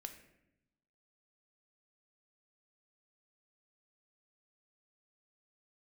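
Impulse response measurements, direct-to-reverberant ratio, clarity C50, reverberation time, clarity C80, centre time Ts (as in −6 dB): 6.0 dB, 9.5 dB, 0.85 s, 11.5 dB, 16 ms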